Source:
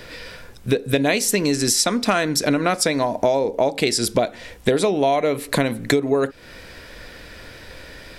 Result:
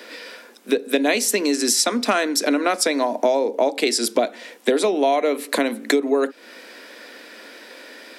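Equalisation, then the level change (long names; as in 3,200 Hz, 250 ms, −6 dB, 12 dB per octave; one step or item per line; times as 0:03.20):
Butterworth high-pass 220 Hz 72 dB per octave
0.0 dB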